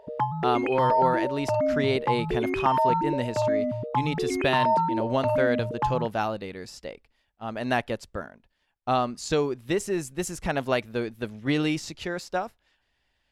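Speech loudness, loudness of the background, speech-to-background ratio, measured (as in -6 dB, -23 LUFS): -29.0 LUFS, -26.5 LUFS, -2.5 dB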